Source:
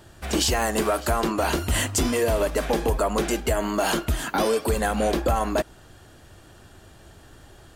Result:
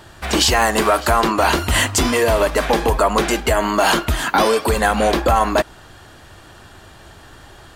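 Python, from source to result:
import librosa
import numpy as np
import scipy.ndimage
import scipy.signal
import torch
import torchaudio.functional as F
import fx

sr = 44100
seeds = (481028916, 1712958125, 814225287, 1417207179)

y = fx.graphic_eq(x, sr, hz=(1000, 2000, 4000), db=(6, 4, 4))
y = F.gain(torch.from_numpy(y), 4.5).numpy()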